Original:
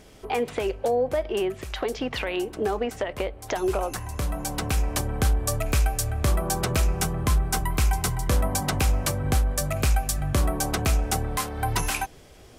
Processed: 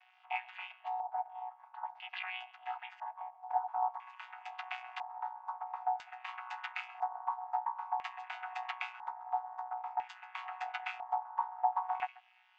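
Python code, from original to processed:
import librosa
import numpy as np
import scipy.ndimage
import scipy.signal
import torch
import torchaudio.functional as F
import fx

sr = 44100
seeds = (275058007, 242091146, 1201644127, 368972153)

y = fx.chord_vocoder(x, sr, chord='bare fifth', root=47)
y = fx.brickwall_highpass(y, sr, low_hz=660.0)
y = y + 10.0 ** (-20.5 / 20.0) * np.pad(y, (int(137 * sr / 1000.0), 0))[:len(y)]
y = fx.filter_lfo_lowpass(y, sr, shape='square', hz=0.5, low_hz=880.0, high_hz=2600.0, q=3.4)
y = F.gain(torch.from_numpy(y), -4.5).numpy()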